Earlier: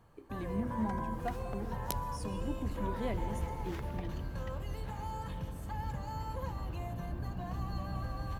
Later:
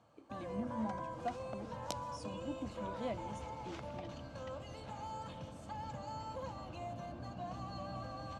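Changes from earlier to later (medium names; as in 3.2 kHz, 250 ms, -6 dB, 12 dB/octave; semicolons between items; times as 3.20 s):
speech: send off; master: add cabinet simulation 160–7800 Hz, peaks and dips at 170 Hz -7 dB, 400 Hz -10 dB, 620 Hz +5 dB, 970 Hz -4 dB, 1.8 kHz -9 dB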